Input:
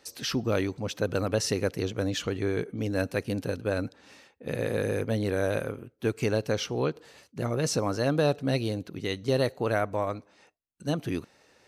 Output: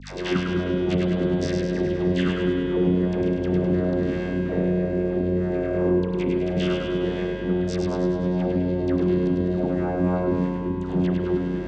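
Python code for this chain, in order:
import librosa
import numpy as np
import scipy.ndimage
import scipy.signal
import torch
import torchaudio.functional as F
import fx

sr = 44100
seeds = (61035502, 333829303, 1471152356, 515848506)

y = fx.octave_divider(x, sr, octaves=1, level_db=-3.0)
y = scipy.signal.sosfilt(scipy.signal.butter(2, 3200.0, 'lowpass', fs=sr, output='sos'), y)
y = fx.peak_eq(y, sr, hz=360.0, db=12.0, octaves=0.32)
y = y + 0.37 * np.pad(y, (int(5.7 * sr / 1000.0), 0))[:len(y)]
y = fx.over_compress(y, sr, threshold_db=-36.0, ratio=-1.0)
y = fx.leveller(y, sr, passes=3)
y = fx.vocoder(y, sr, bands=16, carrier='saw', carrier_hz=89.9)
y = fx.dispersion(y, sr, late='lows', ms=132.0, hz=800.0)
y = fx.add_hum(y, sr, base_hz=50, snr_db=20)
y = fx.echo_split(y, sr, split_hz=360.0, low_ms=380, high_ms=102, feedback_pct=52, wet_db=-4.0)
y = fx.rev_spring(y, sr, rt60_s=3.0, pass_ms=(33,), chirp_ms=45, drr_db=3.0)
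y = fx.band_squash(y, sr, depth_pct=40)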